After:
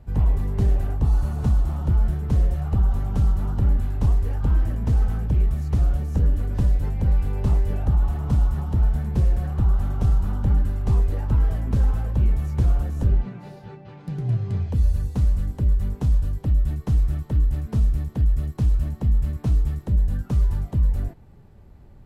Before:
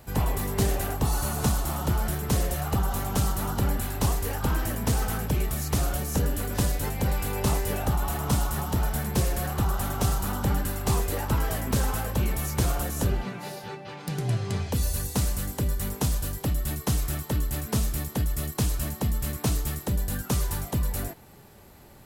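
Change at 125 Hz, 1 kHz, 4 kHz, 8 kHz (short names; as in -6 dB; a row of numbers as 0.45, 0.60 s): +6.0 dB, -7.5 dB, under -10 dB, under -15 dB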